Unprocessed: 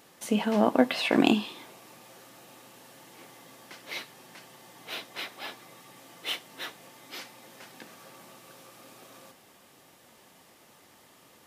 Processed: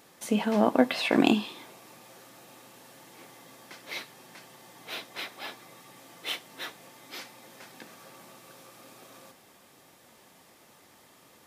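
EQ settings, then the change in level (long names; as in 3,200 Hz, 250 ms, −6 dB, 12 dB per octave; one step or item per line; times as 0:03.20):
notch filter 2,900 Hz, Q 23
0.0 dB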